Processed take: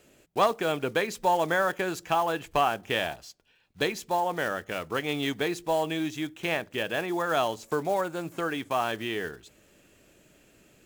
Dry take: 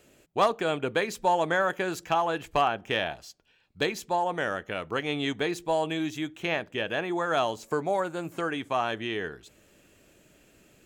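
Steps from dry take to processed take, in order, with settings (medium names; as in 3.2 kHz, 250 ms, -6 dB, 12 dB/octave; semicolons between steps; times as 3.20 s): block-companded coder 5-bit; hum notches 50/100 Hz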